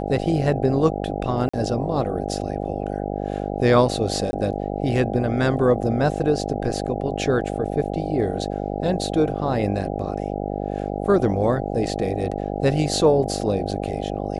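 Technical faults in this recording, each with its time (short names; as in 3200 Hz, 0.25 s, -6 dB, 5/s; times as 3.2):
buzz 50 Hz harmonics 16 -27 dBFS
1.49–1.53 gap 45 ms
4.31–4.33 gap 20 ms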